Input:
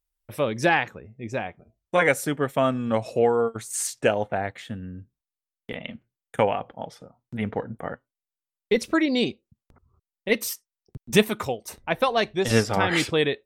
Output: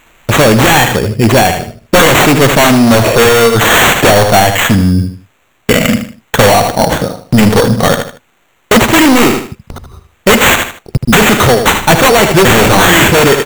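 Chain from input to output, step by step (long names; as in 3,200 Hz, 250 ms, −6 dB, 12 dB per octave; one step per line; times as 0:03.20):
high-shelf EQ 5,400 Hz +8.5 dB
in parallel at −9 dB: sine wavefolder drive 19 dB, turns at −4.5 dBFS
on the sum: sample-rate reduction 5,000 Hz, jitter 0%
gain into a clipping stage and back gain 15.5 dB
on a send: repeating echo 77 ms, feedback 31%, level −10 dB
on the sum: boost into a limiter +17 dB
level −1 dB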